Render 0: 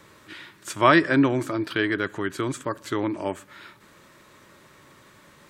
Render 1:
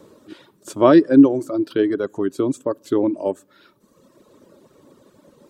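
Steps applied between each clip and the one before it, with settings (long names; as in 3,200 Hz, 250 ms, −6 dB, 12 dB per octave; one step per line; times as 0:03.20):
octave-band graphic EQ 250/500/2,000 Hz +10/+11/−11 dB
reverb reduction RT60 1.4 s
level −1.5 dB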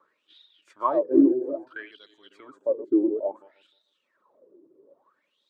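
feedback delay that plays each chunk backwards 153 ms, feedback 43%, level −8 dB
LFO wah 0.59 Hz 330–3,800 Hz, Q 10
level +3 dB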